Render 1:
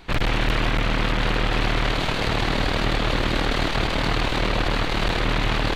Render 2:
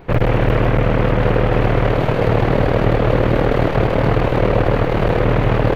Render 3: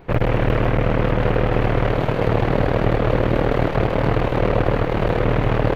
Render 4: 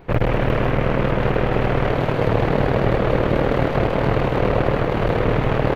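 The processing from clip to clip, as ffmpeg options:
ffmpeg -i in.wav -af "equalizer=frequency=125:width_type=o:width=1:gain=10,equalizer=frequency=500:width_type=o:width=1:gain=11,equalizer=frequency=4000:width_type=o:width=1:gain=-11,equalizer=frequency=8000:width_type=o:width=1:gain=-12,volume=2.5dB" out.wav
ffmpeg -i in.wav -af "aeval=exprs='0.891*(cos(1*acos(clip(val(0)/0.891,-1,1)))-cos(1*PI/2))+0.224*(cos(2*acos(clip(val(0)/0.891,-1,1)))-cos(2*PI/2))':channel_layout=same,volume=-4dB" out.wav
ffmpeg -i in.wav -af "aecho=1:1:195:0.376" out.wav

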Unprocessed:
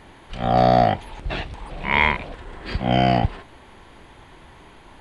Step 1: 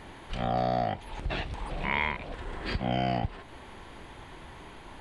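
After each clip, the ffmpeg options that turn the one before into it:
ffmpeg -i in.wav -af "acompressor=threshold=-30dB:ratio=2.5" out.wav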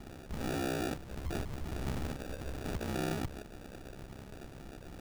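ffmpeg -i in.wav -af "acrusher=samples=42:mix=1:aa=0.000001,aeval=exprs='val(0)*sin(2*PI*33*n/s)':channel_layout=same,asoftclip=type=tanh:threshold=-31.5dB,volume=2dB" out.wav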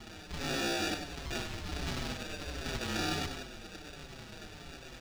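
ffmpeg -i in.wav -filter_complex "[0:a]acrossover=split=5400[link_01][link_02];[link_01]crystalizer=i=9.5:c=0[link_03];[link_03][link_02]amix=inputs=2:normalize=0,aecho=1:1:96|192|288|384|480:0.422|0.19|0.0854|0.0384|0.0173,asplit=2[link_04][link_05];[link_05]adelay=5.8,afreqshift=-1.4[link_06];[link_04][link_06]amix=inputs=2:normalize=1" out.wav

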